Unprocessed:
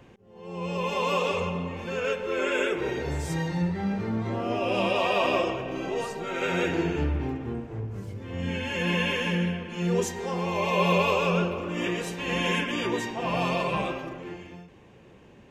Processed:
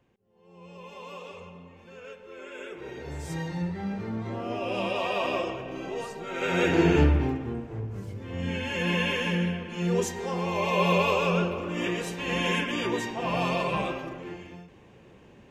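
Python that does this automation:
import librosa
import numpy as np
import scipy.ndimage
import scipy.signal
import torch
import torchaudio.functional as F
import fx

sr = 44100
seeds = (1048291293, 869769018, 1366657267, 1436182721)

y = fx.gain(x, sr, db=fx.line((2.5, -16.0), (3.34, -4.0), (6.26, -4.0), (6.96, 8.0), (7.5, -0.5)))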